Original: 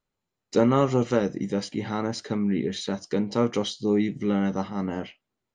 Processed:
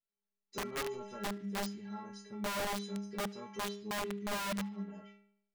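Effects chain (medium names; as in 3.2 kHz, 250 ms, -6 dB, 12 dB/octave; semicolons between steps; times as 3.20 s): inharmonic resonator 200 Hz, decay 0.73 s, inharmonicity 0.008; integer overflow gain 31.5 dB; band-passed feedback delay 74 ms, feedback 60%, band-pass 2.5 kHz, level -22 dB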